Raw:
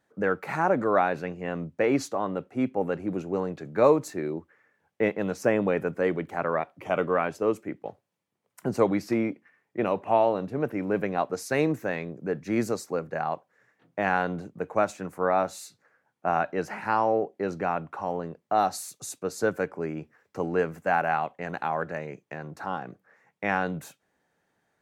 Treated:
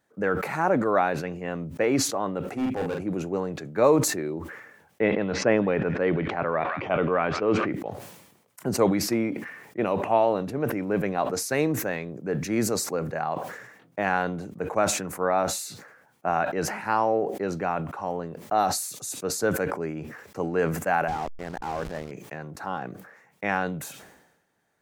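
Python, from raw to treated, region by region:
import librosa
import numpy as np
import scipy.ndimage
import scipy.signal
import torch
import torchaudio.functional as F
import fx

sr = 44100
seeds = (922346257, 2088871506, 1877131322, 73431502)

y = fx.chain(x, sr, fx.clip_hard(threshold_db=-25.0),
    fx.doubler(ms=42.0, db=-3.5), at=(2.49, 3.01))
y = fx.chain(y, sr, fx.lowpass(hz=4100.0, slope=24),
    fx.echo_wet_highpass(ms=162, feedback_pct=48, hz=1500.0, wet_db=-18.5),
    fx.sustainer(db_per_s=36.0), at=(5.01, 7.72))
y = fx.chain(y, sr, fx.delta_mod(bps=32000, step_db=-40.5),
    fx.backlash(play_db=-31.5), at=(21.08, 22.11))
y = fx.high_shelf(y, sr, hz=7000.0, db=6.0)
y = fx.sustainer(y, sr, db_per_s=58.0)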